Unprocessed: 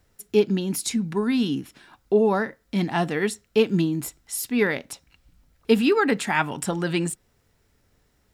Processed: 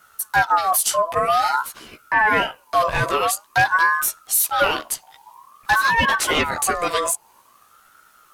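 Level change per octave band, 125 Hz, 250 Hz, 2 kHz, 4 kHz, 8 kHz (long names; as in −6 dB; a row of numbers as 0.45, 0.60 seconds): −5.0, −12.0, +10.5, +7.0, +10.5 decibels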